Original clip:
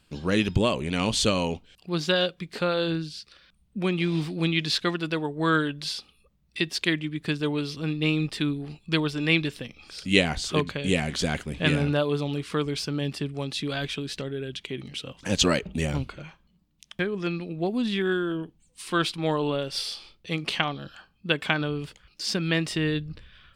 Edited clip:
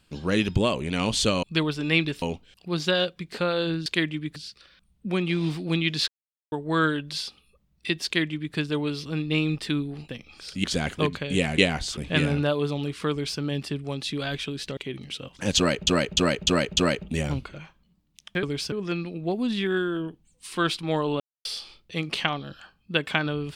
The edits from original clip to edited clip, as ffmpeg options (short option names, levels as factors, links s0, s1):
-filter_complex "[0:a]asplit=21[s0][s1][s2][s3][s4][s5][s6][s7][s8][s9][s10][s11][s12][s13][s14][s15][s16][s17][s18][s19][s20];[s0]atrim=end=1.432[s21];[s1]atrim=start=8.798:end=9.592[s22];[s2]atrim=start=1.428:end=3.072[s23];[s3]atrim=start=6.758:end=7.262[s24];[s4]atrim=start=3.068:end=4.79,asetpts=PTS-STARTPTS,afade=t=out:st=1.718:d=0.004:c=hsin[s25];[s5]atrim=start=4.79:end=5.23,asetpts=PTS-STARTPTS,volume=0[s26];[s6]atrim=start=5.23:end=8.802,asetpts=PTS-STARTPTS,afade=t=in:d=0.004:c=hsin[s27];[s7]atrim=start=9.588:end=10.142[s28];[s8]atrim=start=11.118:end=11.472[s29];[s9]atrim=start=10.528:end=11.122[s30];[s10]atrim=start=10.138:end=10.532[s31];[s11]atrim=start=11.468:end=14.272[s32];[s12]atrim=start=14.608:end=15.712[s33];[s13]atrim=start=15.408:end=15.712[s34];[s14]atrim=start=15.408:end=15.712[s35];[s15]atrim=start=15.408:end=15.712[s36];[s16]atrim=start=15.408:end=17.072[s37];[s17]atrim=start=12.608:end=12.902[s38];[s18]atrim=start=17.068:end=19.55,asetpts=PTS-STARTPTS,afade=t=out:st=2.478:d=0.004:c=hsin[s39];[s19]atrim=start=19.55:end=19.8,asetpts=PTS-STARTPTS,volume=0[s40];[s20]atrim=start=19.8,asetpts=PTS-STARTPTS,afade=t=in:d=0.004:c=hsin[s41];[s21][s22]acrossfade=d=0.004:c1=hsin:c2=hsin[s42];[s42][s23]acrossfade=d=0.004:c1=hsin:c2=hsin[s43];[s43][s24]acrossfade=d=0.004:c1=hsin:c2=hsin[s44];[s25][s26][s27]concat=n=3:v=0:a=1[s45];[s44][s45]acrossfade=d=0.004:c1=hsin:c2=hsin[s46];[s46][s28]acrossfade=d=0.004:c1=hsin:c2=hsin[s47];[s47][s29]acrossfade=d=0.004:c1=hsin:c2=hsin[s48];[s48][s30]acrossfade=d=0.004:c1=hsin:c2=hsin[s49];[s49][s31]acrossfade=d=0.004:c1=hsin:c2=hsin[s50];[s50][s32]acrossfade=d=0.004:c1=hsin:c2=hsin[s51];[s51][s33]acrossfade=d=0.004:c1=hsin:c2=hsin[s52];[s52][s34]acrossfade=d=0.004:c1=hsin:c2=hsin[s53];[s53][s35]acrossfade=d=0.004:c1=hsin:c2=hsin[s54];[s54][s36]acrossfade=d=0.004:c1=hsin:c2=hsin[s55];[s55][s37]acrossfade=d=0.004:c1=hsin:c2=hsin[s56];[s56][s38]acrossfade=d=0.004:c1=hsin:c2=hsin[s57];[s39][s40][s41]concat=n=3:v=0:a=1[s58];[s57][s58]acrossfade=d=0.004:c1=hsin:c2=hsin"